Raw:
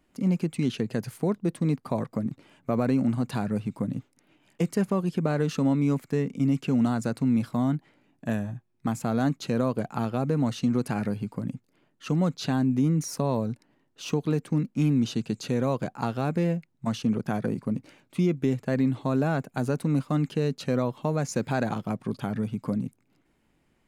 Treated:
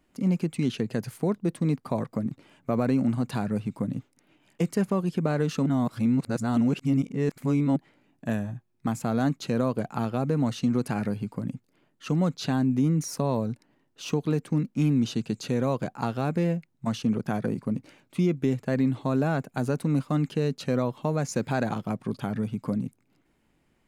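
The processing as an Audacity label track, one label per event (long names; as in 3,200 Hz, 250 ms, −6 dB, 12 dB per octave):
5.660000	7.760000	reverse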